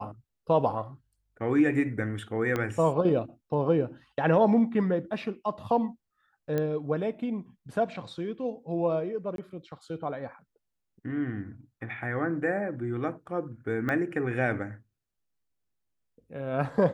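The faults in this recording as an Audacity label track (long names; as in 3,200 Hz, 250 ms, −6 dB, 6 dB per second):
2.560000	2.560000	click −16 dBFS
6.580000	6.580000	click −17 dBFS
9.360000	9.380000	drop-out 22 ms
13.890000	13.890000	click −19 dBFS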